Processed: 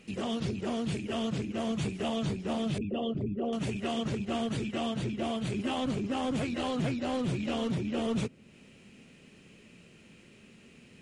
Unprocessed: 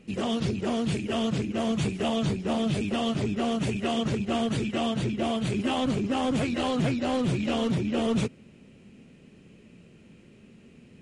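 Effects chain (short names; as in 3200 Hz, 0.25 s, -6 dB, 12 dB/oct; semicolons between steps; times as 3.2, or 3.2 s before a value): 2.78–3.53 formant sharpening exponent 2; mismatched tape noise reduction encoder only; gain -5 dB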